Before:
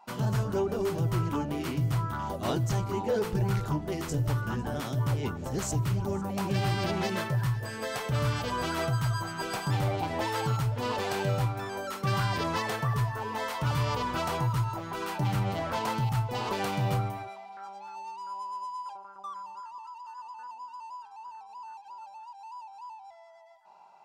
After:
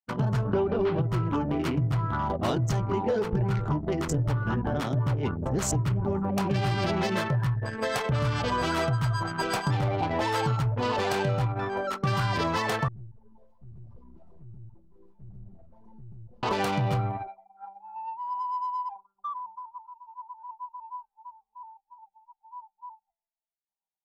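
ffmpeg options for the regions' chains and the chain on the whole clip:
ffmpeg -i in.wav -filter_complex "[0:a]asettb=1/sr,asplit=3[link_01][link_02][link_03];[link_01]atrim=end=0.534[link_04];[link_02]atrim=start=0.53:end=1.02,asetpts=PTS-STARTPTS,afade=type=in:duration=0.004:curve=qsin,afade=type=out:start_time=0.486:duration=0.004:curve=qsin,lowpass=frequency=3800:width=0.5412,lowpass=frequency=3800:width=1.3066,acontrast=32[link_05];[link_03]atrim=start=1.016[link_06];[link_04][link_05]acrossfade=duration=0.004:curve1=hsin:curve2=qsin[link_07];[link_07][link_06]acrossfade=duration=0.004:curve1=qsin:curve2=hsin,asettb=1/sr,asplit=3[link_08][link_09][link_10];[link_08]atrim=end=12.884[link_11];[link_09]atrim=start=12.88:end=16.43,asetpts=PTS-STARTPTS,afade=type=in:duration=0.004:curve=qsin,afade=type=out:start_time=3.546:duration=0.004:curve=qsin,equalizer=frequency=1600:width=0.58:gain=-13.5,aeval=exprs='(tanh(126*val(0)+0.35)-tanh(0.35))/126':channel_layout=same[link_12];[link_10]atrim=start=16.426[link_13];[link_11][link_12]acrossfade=duration=0.004:curve1=hsin:curve2=qsin[link_14];[link_14][link_13]acrossfade=duration=0.004:curve1=qsin:curve2=hsin,agate=range=-33dB:threshold=-41dB:ratio=3:detection=peak,anlmdn=3.98,acompressor=threshold=-30dB:ratio=6,volume=7dB" out.wav

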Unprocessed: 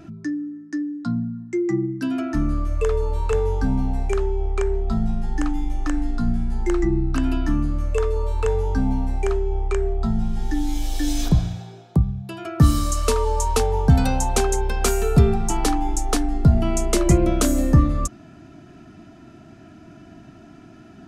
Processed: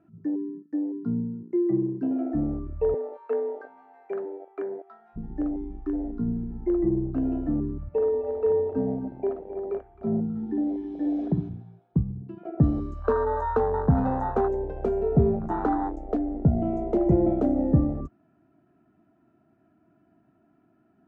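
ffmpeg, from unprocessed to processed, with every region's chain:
ffmpeg -i in.wav -filter_complex "[0:a]asettb=1/sr,asplit=3[link_01][link_02][link_03];[link_01]atrim=end=2.944[link_04];[link_02]atrim=start=2.94:end=5.16,asetpts=PTS-STARTPTS,afade=type=in:duration=0.004:curve=qsin,afade=type=out:start_time=2.216:duration=0.004:curve=qsin,highpass=frequency=440:width=0.5412,highpass=frequency=440:width=1.3066,equalizer=frequency=1700:width_type=o:width=0.98:gain=11[link_05];[link_03]atrim=start=5.156[link_06];[link_04][link_05]acrossfade=duration=0.004:curve1=hsin:curve2=qsin[link_07];[link_07][link_06]acrossfade=duration=0.004:curve1=qsin:curve2=hsin,asettb=1/sr,asplit=3[link_08][link_09][link_10];[link_08]atrim=end=7.884[link_11];[link_09]atrim=start=7.88:end=11.49,asetpts=PTS-STARTPTS,afade=type=in:duration=0.004:curve=qsin,afade=type=out:start_time=3.606:duration=0.004:curve=qsin,highpass=150,lowpass=6000,aecho=1:1:55|265|324:0.562|0.251|0.316,atrim=end_sample=159201[link_12];[link_10]atrim=start=11.486[link_13];[link_11][link_12]acrossfade=duration=0.004:curve1=hsin:curve2=qsin[link_14];[link_14][link_13]acrossfade=duration=0.004:curve1=qsin:curve2=hsin,lowpass=1400,afwtdn=0.0794,highpass=frequency=210:poles=1" out.wav

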